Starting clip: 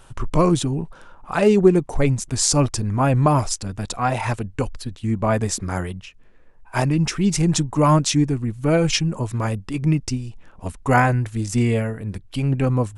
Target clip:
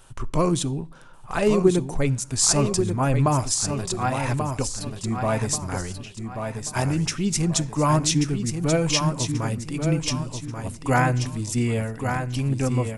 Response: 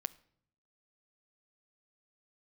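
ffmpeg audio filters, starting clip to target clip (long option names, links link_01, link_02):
-filter_complex "[0:a]aecho=1:1:1135|2270|3405|4540:0.473|0.175|0.0648|0.024,asplit=2[link_01][link_02];[1:a]atrim=start_sample=2205,highshelf=frequency=3700:gain=9.5[link_03];[link_02][link_03]afir=irnorm=-1:irlink=0,volume=4.5dB[link_04];[link_01][link_04]amix=inputs=2:normalize=0,volume=-12.5dB"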